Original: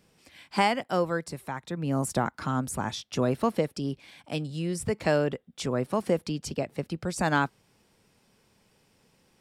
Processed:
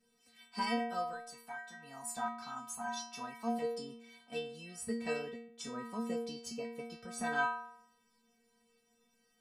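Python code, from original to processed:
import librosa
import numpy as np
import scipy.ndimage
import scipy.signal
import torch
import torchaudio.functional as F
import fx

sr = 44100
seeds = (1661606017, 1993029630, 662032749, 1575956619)

y = fx.low_shelf_res(x, sr, hz=630.0, db=-7.5, q=3.0, at=(1.13, 3.62))
y = fx.stiff_resonator(y, sr, f0_hz=230.0, decay_s=0.82, stiffness=0.008)
y = y * 10.0 ** (9.5 / 20.0)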